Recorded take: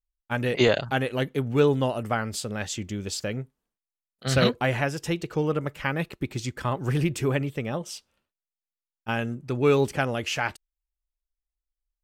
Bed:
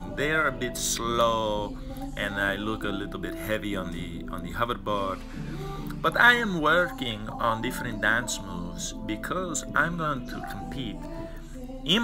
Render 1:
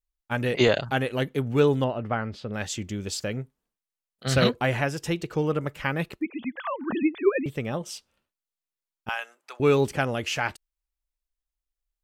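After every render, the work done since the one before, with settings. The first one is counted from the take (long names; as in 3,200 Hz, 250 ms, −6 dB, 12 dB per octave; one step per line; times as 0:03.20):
0:01.84–0:02.54: high-frequency loss of the air 290 metres
0:06.21–0:07.46: three sine waves on the formant tracks
0:09.09–0:09.60: high-pass filter 750 Hz 24 dB per octave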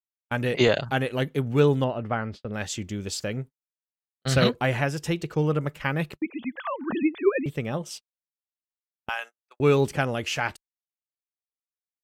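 noise gate −38 dBFS, range −40 dB
dynamic equaliser 150 Hz, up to +5 dB, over −44 dBFS, Q 7.4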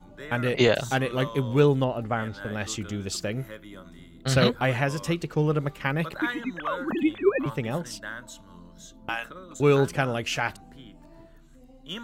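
mix in bed −13.5 dB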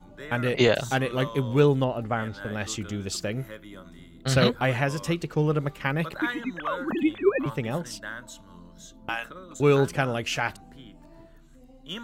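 no processing that can be heard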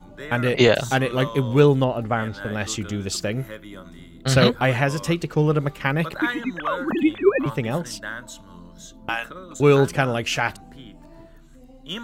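level +4.5 dB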